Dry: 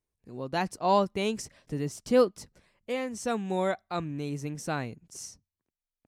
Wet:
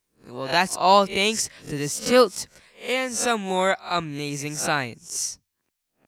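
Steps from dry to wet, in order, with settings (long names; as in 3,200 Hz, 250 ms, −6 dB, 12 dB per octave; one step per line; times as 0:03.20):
peak hold with a rise ahead of every peak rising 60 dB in 0.30 s
tilt shelving filter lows −6 dB, about 800 Hz
level +7.5 dB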